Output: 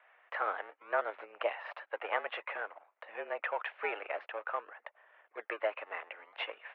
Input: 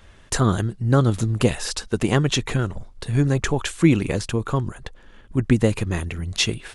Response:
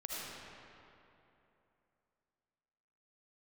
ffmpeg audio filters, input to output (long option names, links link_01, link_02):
-filter_complex "[0:a]asplit=2[link_01][link_02];[link_02]acrusher=samples=34:mix=1:aa=0.000001:lfo=1:lforange=34:lforate=0.54,volume=-11dB[link_03];[link_01][link_03]amix=inputs=2:normalize=0,highpass=frequency=530:width_type=q:width=0.5412,highpass=frequency=530:width_type=q:width=1.307,lowpass=frequency=2400:width_type=q:width=0.5176,lowpass=frequency=2400:width_type=q:width=0.7071,lowpass=frequency=2400:width_type=q:width=1.932,afreqshift=100,volume=-7dB"